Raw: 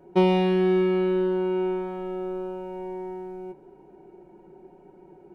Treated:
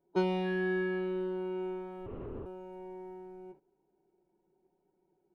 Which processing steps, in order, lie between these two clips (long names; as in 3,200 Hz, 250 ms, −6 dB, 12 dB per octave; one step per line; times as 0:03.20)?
noise gate −43 dBFS, range −14 dB
noise reduction from a noise print of the clip's start 16 dB
0:02.06–0:02.46: linear-prediction vocoder at 8 kHz whisper
level +5 dB